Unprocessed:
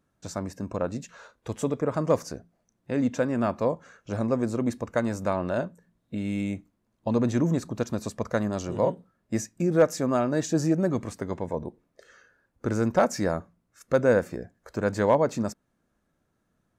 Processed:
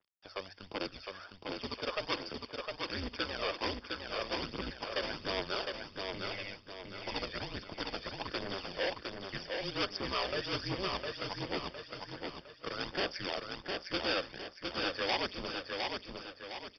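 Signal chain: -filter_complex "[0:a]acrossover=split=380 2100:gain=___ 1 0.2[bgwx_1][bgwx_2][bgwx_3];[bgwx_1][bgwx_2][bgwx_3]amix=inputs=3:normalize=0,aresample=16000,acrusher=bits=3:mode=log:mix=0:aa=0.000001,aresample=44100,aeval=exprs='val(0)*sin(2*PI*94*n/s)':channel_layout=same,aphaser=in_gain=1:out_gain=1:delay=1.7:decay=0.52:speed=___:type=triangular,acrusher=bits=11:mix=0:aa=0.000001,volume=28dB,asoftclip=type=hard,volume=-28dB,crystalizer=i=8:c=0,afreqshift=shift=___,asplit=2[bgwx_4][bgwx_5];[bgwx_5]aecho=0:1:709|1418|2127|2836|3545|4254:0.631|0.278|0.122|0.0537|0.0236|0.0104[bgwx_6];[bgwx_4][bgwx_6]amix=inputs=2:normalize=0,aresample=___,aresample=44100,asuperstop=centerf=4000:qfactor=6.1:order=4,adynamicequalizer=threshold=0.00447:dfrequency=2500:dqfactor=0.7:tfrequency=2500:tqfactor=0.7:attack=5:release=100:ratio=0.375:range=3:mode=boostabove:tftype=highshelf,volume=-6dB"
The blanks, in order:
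0.0708, 1.3, -99, 11025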